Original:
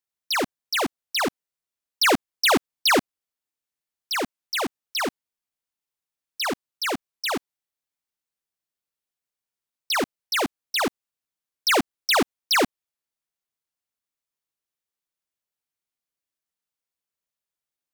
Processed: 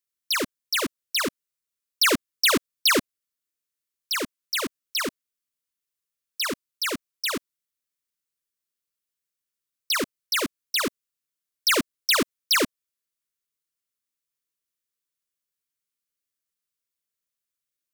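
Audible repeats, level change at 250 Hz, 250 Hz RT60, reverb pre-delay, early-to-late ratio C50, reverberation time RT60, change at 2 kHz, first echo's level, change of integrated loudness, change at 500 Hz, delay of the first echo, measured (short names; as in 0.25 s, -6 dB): none, -2.0 dB, none, none, none, none, -1.0 dB, none, -0.5 dB, -3.5 dB, none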